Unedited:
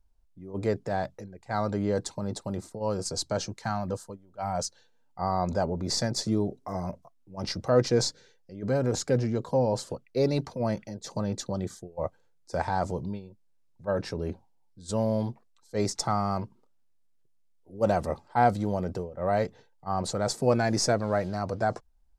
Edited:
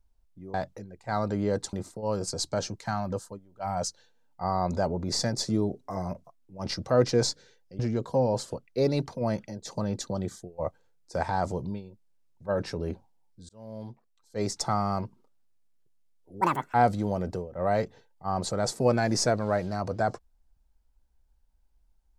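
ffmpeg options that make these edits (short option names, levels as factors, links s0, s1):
-filter_complex "[0:a]asplit=7[s0][s1][s2][s3][s4][s5][s6];[s0]atrim=end=0.542[s7];[s1]atrim=start=0.958:end=2.152[s8];[s2]atrim=start=2.508:end=8.572[s9];[s3]atrim=start=9.178:end=14.88,asetpts=PTS-STARTPTS,afade=t=out:st=5.698:d=0.004:c=hsin[s10];[s4]atrim=start=14.88:end=17.804,asetpts=PTS-STARTPTS,afade=t=in:d=1.21[s11];[s5]atrim=start=17.8:end=18.36,asetpts=PTS-STARTPTS,asetrate=74529,aresample=44100,atrim=end_sample=14613,asetpts=PTS-STARTPTS[s12];[s6]atrim=start=18.356[s13];[s7][s8]acrossfade=d=0.004:c1=hsin:c2=hsin[s14];[s14][s9]acrossfade=d=0.004:c1=hsin:c2=hsin[s15];[s10][s11]concat=n=2:v=0:a=1[s16];[s15][s16]acrossfade=d=0.004:c1=hsin:c2=hsin[s17];[s17][s12]acrossfade=d=0.004:c1=hsin:c2=hsin[s18];[s18][s13]acrossfade=d=0.004:c1=hsin:c2=hsin"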